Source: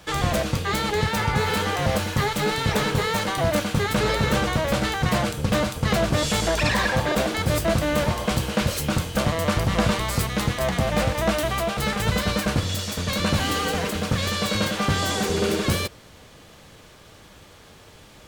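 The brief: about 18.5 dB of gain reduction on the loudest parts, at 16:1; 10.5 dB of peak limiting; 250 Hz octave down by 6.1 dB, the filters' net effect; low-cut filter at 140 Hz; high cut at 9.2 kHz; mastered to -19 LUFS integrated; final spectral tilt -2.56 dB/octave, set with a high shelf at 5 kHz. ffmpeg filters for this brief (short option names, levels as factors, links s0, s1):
-af "highpass=140,lowpass=9200,equalizer=f=250:t=o:g=-7.5,highshelf=f=5000:g=8,acompressor=threshold=0.0126:ratio=16,volume=18.8,alimiter=limit=0.299:level=0:latency=1"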